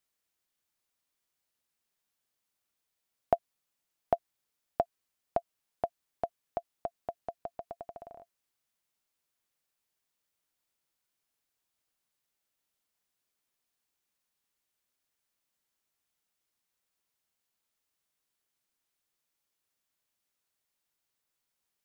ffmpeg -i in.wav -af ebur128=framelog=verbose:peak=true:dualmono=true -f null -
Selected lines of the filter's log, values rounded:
Integrated loudness:
  I:         -35.2 LUFS
  Threshold: -45.6 LUFS
Loudness range:
  LRA:        12.8 LU
  Threshold: -58.0 LUFS
  LRA low:   -47.5 LUFS
  LRA high:  -34.7 LUFS
True peak:
  Peak:      -10.5 dBFS